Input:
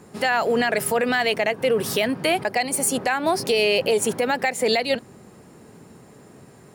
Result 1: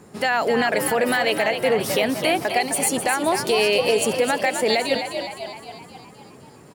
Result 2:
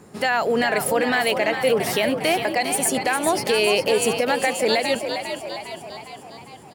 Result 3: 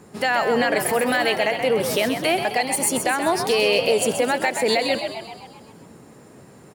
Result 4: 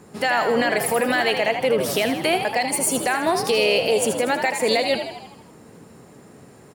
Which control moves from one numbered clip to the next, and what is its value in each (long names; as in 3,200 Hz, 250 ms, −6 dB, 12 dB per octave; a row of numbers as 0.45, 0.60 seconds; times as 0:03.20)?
echo with shifted repeats, delay time: 258, 405, 130, 80 milliseconds